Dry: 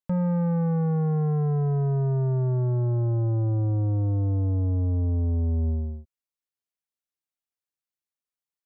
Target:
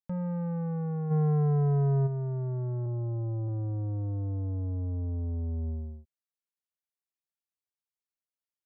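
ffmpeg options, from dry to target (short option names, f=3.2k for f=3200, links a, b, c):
-filter_complex "[0:a]asplit=3[a][b][c];[a]afade=t=out:st=1.1:d=0.02[d];[b]acontrast=82,afade=t=in:st=1.1:d=0.02,afade=t=out:st=2.06:d=0.02[e];[c]afade=t=in:st=2.06:d=0.02[f];[d][e][f]amix=inputs=3:normalize=0,asettb=1/sr,asplit=3[g][h][i];[g]atrim=end=2.864[j];[h]atrim=start=2.86:end=3.48,asetpts=PTS-STARTPTS,afade=t=in:d=0.004:c=qsin,afade=t=out:st=0.616:d=0.004:c=qsin,lowpass=f=1.3k:w=0.5412,lowpass=f=1.3k:w=1.3066[k];[i]atrim=start=3.476[l];[j][k]acrossfade=d=0.004:c1=hsin:c2=qsin[m];[m][l]acrossfade=d=0.004:c1=qsin:c2=hsin,volume=-8dB"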